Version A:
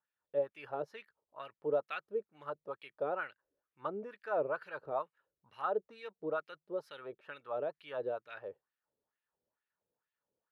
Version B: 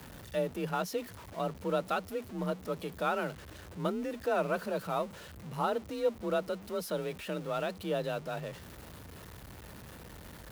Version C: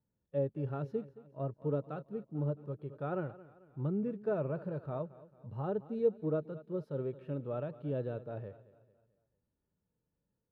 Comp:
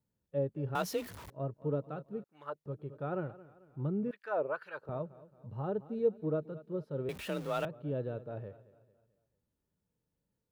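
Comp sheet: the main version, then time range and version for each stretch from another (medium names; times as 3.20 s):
C
0.75–1.30 s: from B
2.24–2.66 s: from A
4.11–4.89 s: from A
7.09–7.65 s: from B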